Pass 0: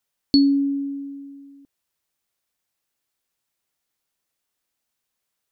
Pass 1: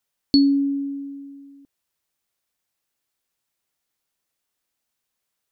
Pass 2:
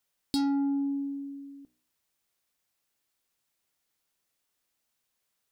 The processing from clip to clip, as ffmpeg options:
-af anull
-af "bandreject=f=61.49:t=h:w=4,bandreject=f=122.98:t=h:w=4,bandreject=f=184.47:t=h:w=4,bandreject=f=245.96:t=h:w=4,bandreject=f=307.45:t=h:w=4,bandreject=f=368.94:t=h:w=4,bandreject=f=430.43:t=h:w=4,bandreject=f=491.92:t=h:w=4,bandreject=f=553.41:t=h:w=4,bandreject=f=614.9:t=h:w=4,bandreject=f=676.39:t=h:w=4,bandreject=f=737.88:t=h:w=4,bandreject=f=799.37:t=h:w=4,bandreject=f=860.86:t=h:w=4,bandreject=f=922.35:t=h:w=4,bandreject=f=983.84:t=h:w=4,bandreject=f=1045.33:t=h:w=4,bandreject=f=1106.82:t=h:w=4,bandreject=f=1168.31:t=h:w=4,bandreject=f=1229.8:t=h:w=4,bandreject=f=1291.29:t=h:w=4,bandreject=f=1352.78:t=h:w=4,bandreject=f=1414.27:t=h:w=4,bandreject=f=1475.76:t=h:w=4,bandreject=f=1537.25:t=h:w=4,bandreject=f=1598.74:t=h:w=4,bandreject=f=1660.23:t=h:w=4,bandreject=f=1721.72:t=h:w=4,bandreject=f=1783.21:t=h:w=4,bandreject=f=1844.7:t=h:w=4,asoftclip=type=tanh:threshold=0.0794,acompressor=threshold=0.0501:ratio=6"

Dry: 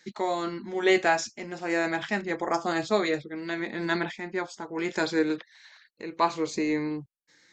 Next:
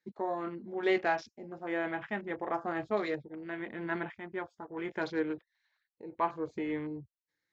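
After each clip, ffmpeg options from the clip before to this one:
-af "afwtdn=0.0126,lowpass=f=2300:p=1,asubboost=boost=5:cutoff=84,volume=0.531"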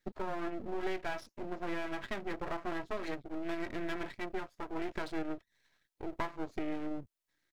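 -af "aecho=1:1:3.1:0.4,acompressor=threshold=0.0112:ratio=5,aeval=exprs='max(val(0),0)':c=same,volume=2.66"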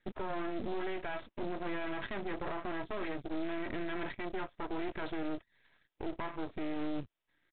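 -af "alimiter=level_in=2.82:limit=0.0631:level=0:latency=1:release=11,volume=0.355,aresample=8000,acrusher=bits=5:mode=log:mix=0:aa=0.000001,aresample=44100,volume=1.88"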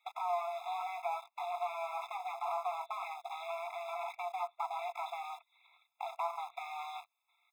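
-filter_complex "[0:a]acrossover=split=89|930[s0][s1][s2];[s0]acompressor=threshold=0.00501:ratio=4[s3];[s1]acompressor=threshold=0.0126:ratio=4[s4];[s2]acompressor=threshold=0.00178:ratio=4[s5];[s3][s4][s5]amix=inputs=3:normalize=0,asplit=2[s6][s7];[s7]aeval=exprs='val(0)*gte(abs(val(0)),0.00398)':c=same,volume=0.473[s8];[s6][s8]amix=inputs=2:normalize=0,afftfilt=real='re*eq(mod(floor(b*sr/1024/680),2),1)':imag='im*eq(mod(floor(b*sr/1024/680),2),1)':win_size=1024:overlap=0.75,volume=2.66"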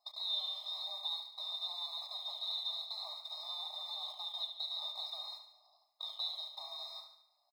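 -filter_complex "[0:a]afftfilt=real='real(if(lt(b,272),68*(eq(floor(b/68),0)*1+eq(floor(b/68),1)*3+eq(floor(b/68),2)*0+eq(floor(b/68),3)*2)+mod(b,68),b),0)':imag='imag(if(lt(b,272),68*(eq(floor(b/68),0)*1+eq(floor(b/68),1)*3+eq(floor(b/68),2)*0+eq(floor(b/68),3)*2)+mod(b,68),b),0)':win_size=2048:overlap=0.75,flanger=delay=3.9:depth=7.1:regen=87:speed=0.53:shape=sinusoidal,asplit=2[s0][s1];[s1]aecho=0:1:72|144|216|288|360|432:0.376|0.199|0.106|0.056|0.0297|0.0157[s2];[s0][s2]amix=inputs=2:normalize=0,volume=1.12"

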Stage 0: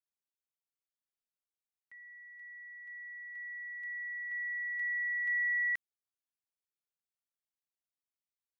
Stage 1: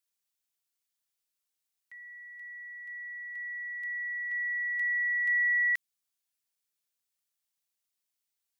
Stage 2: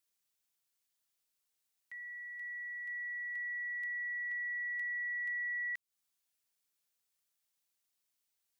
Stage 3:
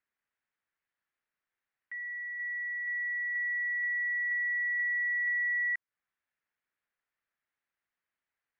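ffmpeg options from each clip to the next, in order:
-af "highshelf=f=2100:g=11"
-af "acompressor=threshold=0.0112:ratio=6,volume=1.19"
-af "lowpass=f=1800:t=q:w=2.6"

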